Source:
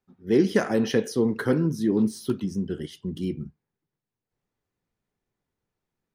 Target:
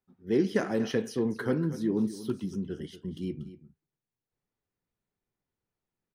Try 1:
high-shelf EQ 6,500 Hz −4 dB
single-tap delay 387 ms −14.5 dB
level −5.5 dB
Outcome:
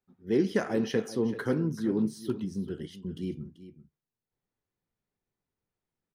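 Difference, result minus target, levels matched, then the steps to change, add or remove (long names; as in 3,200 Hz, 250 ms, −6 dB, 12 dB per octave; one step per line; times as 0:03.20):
echo 149 ms late
change: single-tap delay 238 ms −14.5 dB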